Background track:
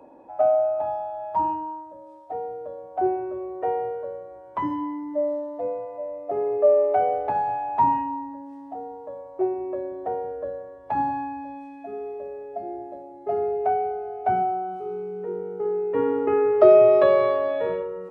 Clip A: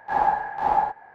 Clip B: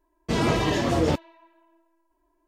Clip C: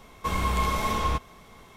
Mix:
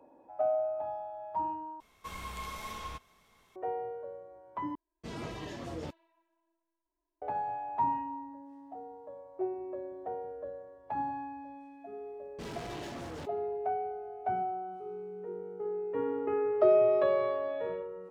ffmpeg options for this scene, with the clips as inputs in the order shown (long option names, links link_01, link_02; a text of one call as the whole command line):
ffmpeg -i bed.wav -i cue0.wav -i cue1.wav -i cue2.wav -filter_complex "[2:a]asplit=2[link_01][link_02];[0:a]volume=-10dB[link_03];[3:a]tiltshelf=frequency=900:gain=-4[link_04];[link_02]asoftclip=type=hard:threshold=-27.5dB[link_05];[link_03]asplit=3[link_06][link_07][link_08];[link_06]atrim=end=1.804[link_09];[link_04]atrim=end=1.76,asetpts=PTS-STARTPTS,volume=-15dB[link_10];[link_07]atrim=start=3.556:end=4.754[link_11];[link_01]atrim=end=2.47,asetpts=PTS-STARTPTS,volume=-18dB[link_12];[link_08]atrim=start=7.216[link_13];[link_05]atrim=end=2.47,asetpts=PTS-STARTPTS,volume=-13dB,afade=type=in:duration=0.004:curve=hsin,afade=type=out:start_time=2.466:duration=0.004:curve=hsin,adelay=12100[link_14];[link_09][link_10]acrossfade=duration=0.004:curve1=hsin:curve2=hsin[link_15];[link_15][link_11]acrossfade=duration=0.004:curve1=hsin:curve2=hsin[link_16];[link_16][link_12]acrossfade=duration=0.004:curve1=hsin:curve2=hsin[link_17];[link_17][link_13]acrossfade=duration=0.004:curve1=hsin:curve2=hsin[link_18];[link_18][link_14]amix=inputs=2:normalize=0" out.wav